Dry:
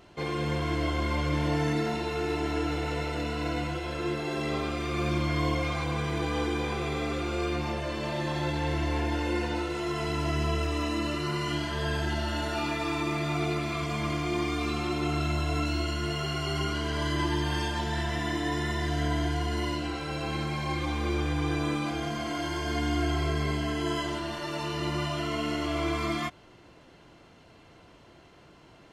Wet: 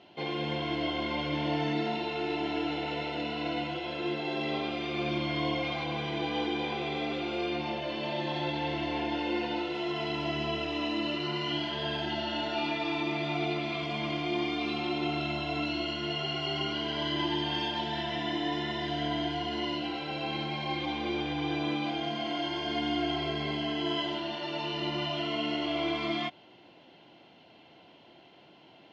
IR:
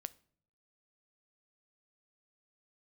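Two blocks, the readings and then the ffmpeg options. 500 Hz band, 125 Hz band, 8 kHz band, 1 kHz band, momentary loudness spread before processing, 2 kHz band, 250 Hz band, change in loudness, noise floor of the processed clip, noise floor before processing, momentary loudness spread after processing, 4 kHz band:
-1.5 dB, -9.0 dB, under -10 dB, -1.0 dB, 3 LU, -1.5 dB, -1.5 dB, -2.0 dB, -56 dBFS, -55 dBFS, 3 LU, +3.0 dB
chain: -af "highpass=200,equalizer=f=450:t=q:w=4:g=-4,equalizer=f=780:t=q:w=4:g=4,equalizer=f=1.2k:t=q:w=4:g=-10,equalizer=f=1.7k:t=q:w=4:g=-5,equalizer=f=3.1k:t=q:w=4:g=6,lowpass=f=4.5k:w=0.5412,lowpass=f=4.5k:w=1.3066"

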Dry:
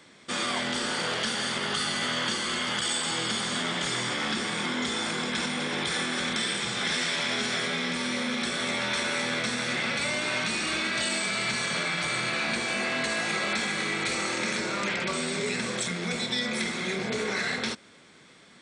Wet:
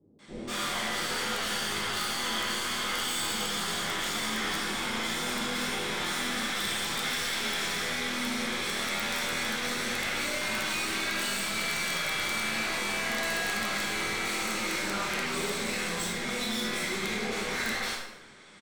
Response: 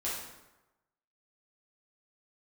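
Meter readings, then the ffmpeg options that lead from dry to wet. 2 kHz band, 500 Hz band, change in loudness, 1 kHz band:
-2.0 dB, -3.5 dB, -2.0 dB, -1.0 dB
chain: -filter_complex "[0:a]acrossover=split=450[a][b];[b]adelay=190[c];[a][c]amix=inputs=2:normalize=0,aeval=exprs='(tanh(56.2*val(0)+0.75)-tanh(0.75))/56.2':c=same[d];[1:a]atrim=start_sample=2205,asetrate=48510,aresample=44100[e];[d][e]afir=irnorm=-1:irlink=0,aeval=exprs='(mod(14.1*val(0)+1,2)-1)/14.1':c=same,volume=3dB"

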